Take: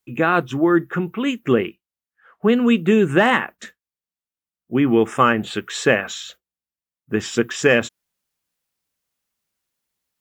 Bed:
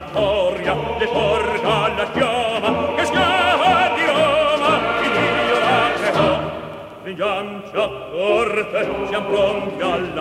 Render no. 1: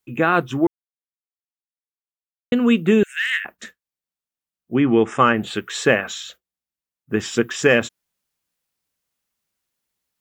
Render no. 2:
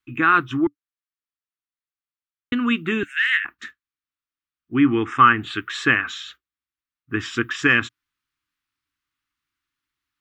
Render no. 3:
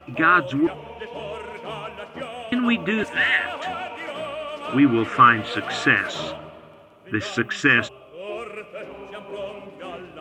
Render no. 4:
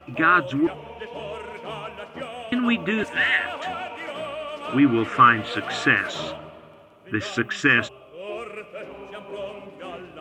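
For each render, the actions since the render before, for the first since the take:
0:00.67–0:02.52: silence; 0:03.03–0:03.45: Butterworth high-pass 1,700 Hz 48 dB per octave; 0:04.75–0:05.34: low-pass filter 7,900 Hz 24 dB per octave
drawn EQ curve 120 Hz 0 dB, 200 Hz −12 dB, 290 Hz +3 dB, 570 Hz −22 dB, 1,200 Hz +5 dB, 3,700 Hz −1 dB, 7,200 Hz −10 dB, 11,000 Hz −12 dB
mix in bed −15.5 dB
level −1 dB

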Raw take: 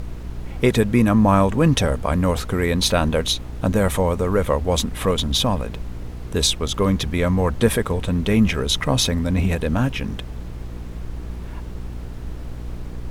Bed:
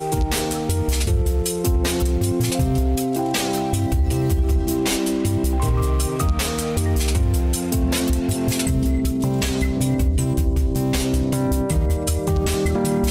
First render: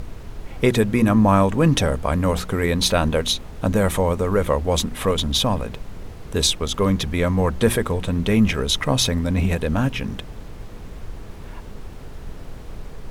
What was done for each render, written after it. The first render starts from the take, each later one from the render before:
hum removal 60 Hz, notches 6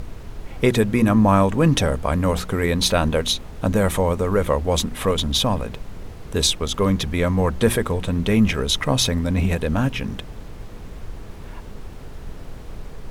no processing that can be heard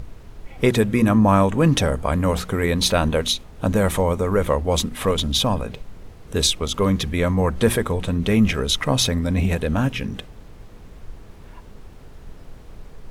noise reduction from a noise print 6 dB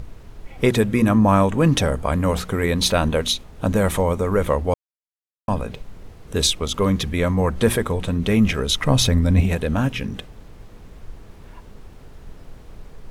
0:04.74–0:05.48: silence
0:08.83–0:09.41: low-shelf EQ 130 Hz +10 dB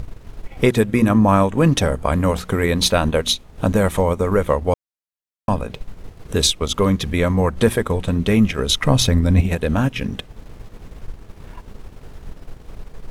transient designer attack +1 dB, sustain −7 dB
in parallel at −3 dB: downward compressor, threshold −25 dBFS, peak gain reduction 14 dB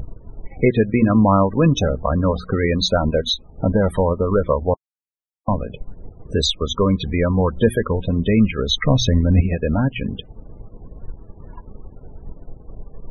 spectral peaks only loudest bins 32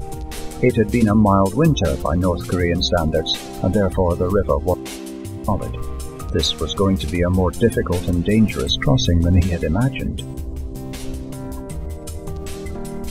mix in bed −10 dB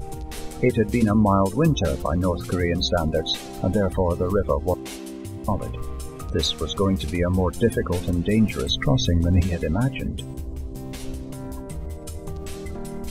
level −4 dB

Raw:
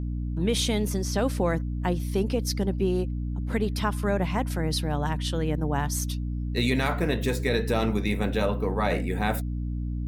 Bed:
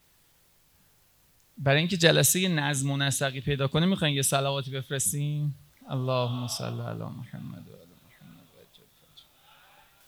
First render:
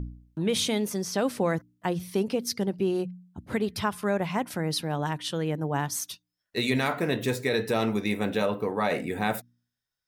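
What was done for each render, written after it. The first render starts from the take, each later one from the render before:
hum removal 60 Hz, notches 5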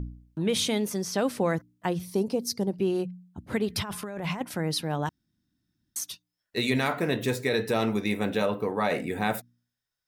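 0:02.05–0:02.73: flat-topped bell 2,100 Hz −9 dB
0:03.70–0:04.41: compressor whose output falls as the input rises −33 dBFS
0:05.09–0:05.96: fill with room tone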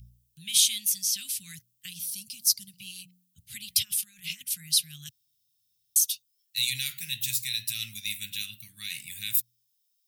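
elliptic band-stop filter 130–2,800 Hz, stop band 70 dB
RIAA equalisation recording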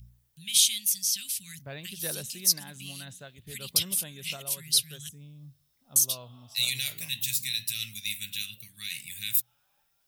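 mix in bed −18.5 dB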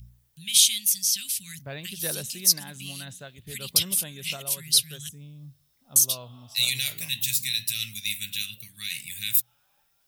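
level +3.5 dB

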